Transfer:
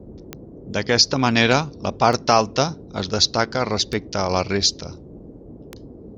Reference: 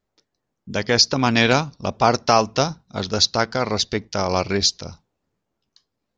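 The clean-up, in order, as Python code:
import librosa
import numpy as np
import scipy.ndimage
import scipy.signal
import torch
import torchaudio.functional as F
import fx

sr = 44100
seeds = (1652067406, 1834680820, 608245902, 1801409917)

y = fx.fix_declick_ar(x, sr, threshold=10.0)
y = fx.noise_reduce(y, sr, print_start_s=5.23, print_end_s=5.73, reduce_db=30.0)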